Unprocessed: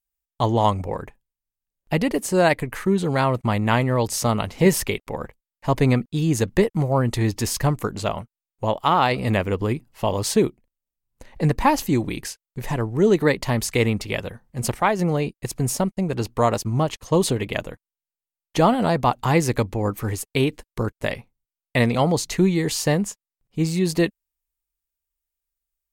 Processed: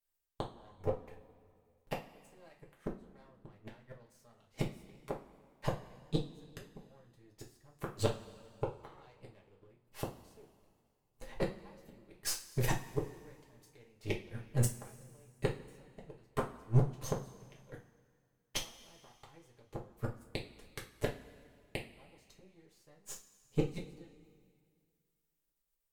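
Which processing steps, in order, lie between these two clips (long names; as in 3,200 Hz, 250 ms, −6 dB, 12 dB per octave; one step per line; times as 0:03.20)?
gain on one half-wave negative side −12 dB
gate with flip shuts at −18 dBFS, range −41 dB
coupled-rooms reverb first 0.26 s, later 2.1 s, from −20 dB, DRR −2.5 dB
level −2.5 dB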